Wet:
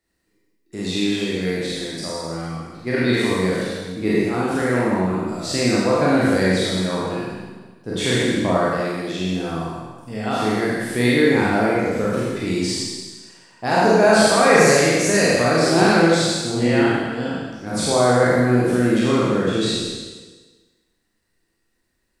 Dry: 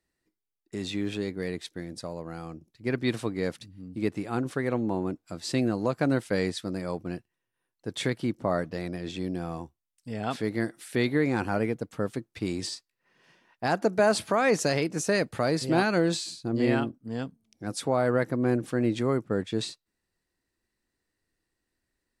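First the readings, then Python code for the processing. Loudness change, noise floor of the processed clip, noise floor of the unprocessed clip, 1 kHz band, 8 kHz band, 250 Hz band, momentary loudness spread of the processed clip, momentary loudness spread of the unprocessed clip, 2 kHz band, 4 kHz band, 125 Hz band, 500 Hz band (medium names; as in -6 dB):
+10.0 dB, -70 dBFS, -84 dBFS, +11.0 dB, +13.0 dB, +9.0 dB, 14 LU, 14 LU, +12.0 dB, +12.5 dB, +8.5 dB, +10.0 dB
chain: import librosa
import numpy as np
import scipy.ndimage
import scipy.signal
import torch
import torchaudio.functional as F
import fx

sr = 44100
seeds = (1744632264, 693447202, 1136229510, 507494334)

y = fx.spec_trails(x, sr, decay_s=1.31)
y = fx.rev_schroeder(y, sr, rt60_s=0.82, comb_ms=33, drr_db=-4.0)
y = y * 10.0 ** (1.5 / 20.0)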